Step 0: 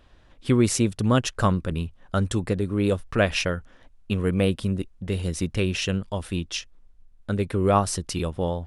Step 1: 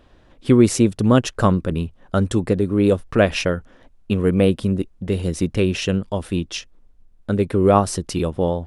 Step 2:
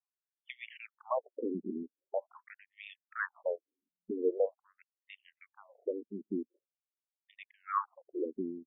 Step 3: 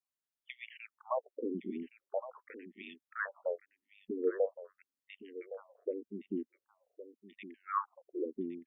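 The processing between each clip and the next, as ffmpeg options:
ffmpeg -i in.wav -af "equalizer=frequency=340:width_type=o:width=2.7:gain=6.5,volume=1dB" out.wav
ffmpeg -i in.wav -af "anlmdn=398,afftfilt=real='re*between(b*sr/1024,280*pow(2600/280,0.5+0.5*sin(2*PI*0.44*pts/sr))/1.41,280*pow(2600/280,0.5+0.5*sin(2*PI*0.44*pts/sr))*1.41)':imag='im*between(b*sr/1024,280*pow(2600/280,0.5+0.5*sin(2*PI*0.44*pts/sr))/1.41,280*pow(2600/280,0.5+0.5*sin(2*PI*0.44*pts/sr))*1.41)':win_size=1024:overlap=0.75,volume=-9dB" out.wav
ffmpeg -i in.wav -af "aecho=1:1:1115:0.211,volume=-1.5dB" out.wav

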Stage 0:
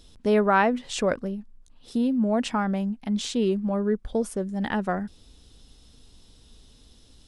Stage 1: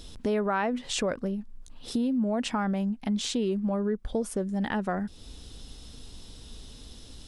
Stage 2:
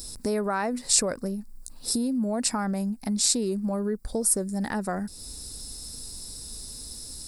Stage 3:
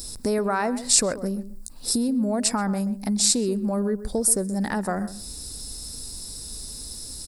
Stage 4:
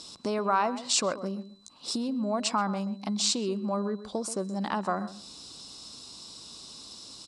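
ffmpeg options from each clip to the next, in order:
ffmpeg -i in.wav -filter_complex "[0:a]asplit=2[link_01][link_02];[link_02]alimiter=limit=-19.5dB:level=0:latency=1:release=73,volume=3dB[link_03];[link_01][link_03]amix=inputs=2:normalize=0,acompressor=threshold=-33dB:ratio=2" out.wav
ffmpeg -i in.wav -af "equalizer=frequency=3150:width_type=o:width=0.33:gain=-10,equalizer=frequency=6300:width_type=o:width=0.33:gain=-11,equalizer=frequency=10000:width_type=o:width=0.33:gain=-3,aexciter=amount=10.4:drive=4.1:freq=4600" out.wav
ffmpeg -i in.wav -filter_complex "[0:a]asplit=2[link_01][link_02];[link_02]adelay=130,lowpass=frequency=1300:poles=1,volume=-12.5dB,asplit=2[link_03][link_04];[link_04]adelay=130,lowpass=frequency=1300:poles=1,volume=0.18[link_05];[link_01][link_03][link_05]amix=inputs=3:normalize=0,volume=3dB" out.wav
ffmpeg -i in.wav -af "highpass=210,equalizer=frequency=250:width_type=q:width=4:gain=-4,equalizer=frequency=450:width_type=q:width=4:gain=-6,equalizer=frequency=1100:width_type=q:width=4:gain=9,equalizer=frequency=1800:width_type=q:width=4:gain=-8,equalizer=frequency=3000:width_type=q:width=4:gain=9,equalizer=frequency=5100:width_type=q:width=4:gain=-4,lowpass=frequency=6300:width=0.5412,lowpass=frequency=6300:width=1.3066,aeval=exprs='val(0)+0.00126*sin(2*PI*4000*n/s)':channel_layout=same,volume=-2dB" out.wav

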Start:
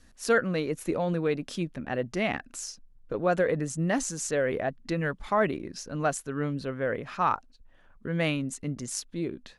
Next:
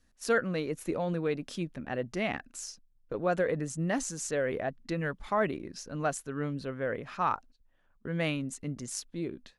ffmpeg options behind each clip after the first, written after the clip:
ffmpeg -i in.wav -af "agate=range=-8dB:threshold=-46dB:ratio=16:detection=peak,volume=-3.5dB" out.wav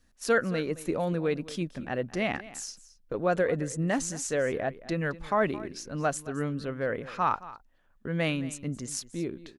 ffmpeg -i in.wav -af "aecho=1:1:219:0.133,volume=2.5dB" out.wav

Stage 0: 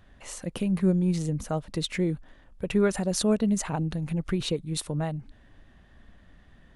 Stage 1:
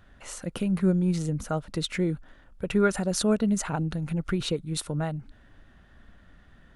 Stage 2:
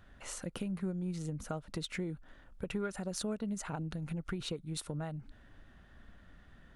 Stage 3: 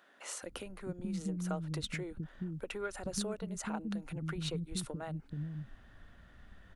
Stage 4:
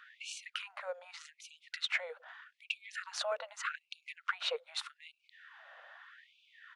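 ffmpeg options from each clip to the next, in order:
ffmpeg -i in.wav -af "equalizer=frequency=1400:width=6.2:gain=8.5" out.wav
ffmpeg -i in.wav -af "acompressor=threshold=-35dB:ratio=3,aeval=exprs='0.0944*(cos(1*acos(clip(val(0)/0.0944,-1,1)))-cos(1*PI/2))+0.00944*(cos(3*acos(clip(val(0)/0.0944,-1,1)))-cos(3*PI/2))':channel_layout=same" out.wav
ffmpeg -i in.wav -filter_complex "[0:a]acrossover=split=290[link_01][link_02];[link_01]adelay=430[link_03];[link_03][link_02]amix=inputs=2:normalize=0,volume=1dB" out.wav
ffmpeg -i in.wav -af "highpass=150,lowpass=3200,afftfilt=real='re*gte(b*sr/1024,470*pow(2300/470,0.5+0.5*sin(2*PI*0.82*pts/sr)))':imag='im*gte(b*sr/1024,470*pow(2300/470,0.5+0.5*sin(2*PI*0.82*pts/sr)))':win_size=1024:overlap=0.75,volume=10.5dB" out.wav

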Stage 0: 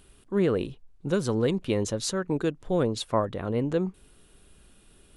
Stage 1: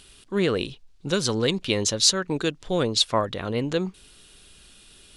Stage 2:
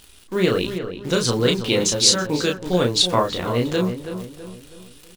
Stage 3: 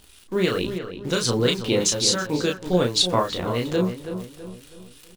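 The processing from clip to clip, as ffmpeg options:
ffmpeg -i in.wav -af "equalizer=frequency=4500:width_type=o:width=2.4:gain=15" out.wav
ffmpeg -i in.wav -filter_complex "[0:a]asplit=2[link_01][link_02];[link_02]aecho=0:1:17|33:0.422|0.631[link_03];[link_01][link_03]amix=inputs=2:normalize=0,acrusher=bits=8:dc=4:mix=0:aa=0.000001,asplit=2[link_04][link_05];[link_05]adelay=326,lowpass=frequency=2100:poles=1,volume=-9dB,asplit=2[link_06][link_07];[link_07]adelay=326,lowpass=frequency=2100:poles=1,volume=0.45,asplit=2[link_08][link_09];[link_09]adelay=326,lowpass=frequency=2100:poles=1,volume=0.45,asplit=2[link_10][link_11];[link_11]adelay=326,lowpass=frequency=2100:poles=1,volume=0.45,asplit=2[link_12][link_13];[link_13]adelay=326,lowpass=frequency=2100:poles=1,volume=0.45[link_14];[link_06][link_08][link_10][link_12][link_14]amix=inputs=5:normalize=0[link_15];[link_04][link_15]amix=inputs=2:normalize=0,volume=2dB" out.wav
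ffmpeg -i in.wav -filter_complex "[0:a]acrossover=split=1000[link_01][link_02];[link_01]aeval=exprs='val(0)*(1-0.5/2+0.5/2*cos(2*PI*2.9*n/s))':channel_layout=same[link_03];[link_02]aeval=exprs='val(0)*(1-0.5/2-0.5/2*cos(2*PI*2.9*n/s))':channel_layout=same[link_04];[link_03][link_04]amix=inputs=2:normalize=0" out.wav

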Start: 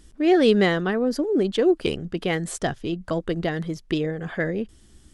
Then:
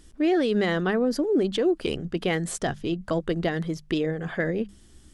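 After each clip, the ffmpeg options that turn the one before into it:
ffmpeg -i in.wav -af "bandreject=frequency=50:width_type=h:width=6,bandreject=frequency=100:width_type=h:width=6,bandreject=frequency=150:width_type=h:width=6,bandreject=frequency=200:width_type=h:width=6,alimiter=limit=-15.5dB:level=0:latency=1:release=58" out.wav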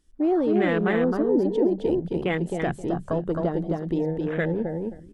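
ffmpeg -i in.wav -af "aecho=1:1:265|530|795:0.708|0.163|0.0375,afwtdn=0.0316" out.wav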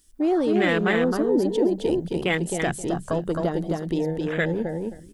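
ffmpeg -i in.wav -af "crystalizer=i=5:c=0" out.wav

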